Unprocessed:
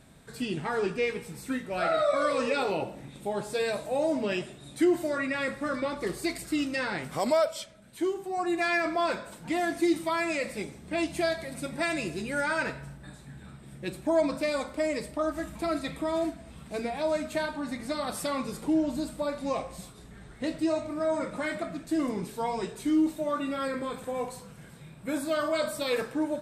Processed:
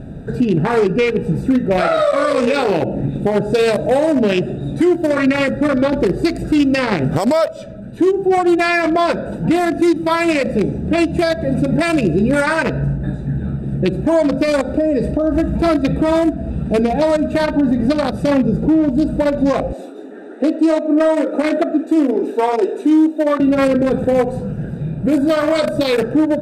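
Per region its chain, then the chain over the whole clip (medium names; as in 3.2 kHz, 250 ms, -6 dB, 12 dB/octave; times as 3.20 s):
14.61–15.32 s: compression 3:1, threshold -36 dBFS + treble shelf 2.2 kHz +3.5 dB
18.11–18.89 s: high-pass 72 Hz + tilt EQ -1.5 dB/octave + three bands expanded up and down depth 40%
19.73–23.40 s: elliptic high-pass 270 Hz, stop band 50 dB + band-stop 4.8 kHz, Q 15
whole clip: local Wiener filter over 41 samples; compression 5:1, threshold -36 dBFS; loudness maximiser +32 dB; trim -6 dB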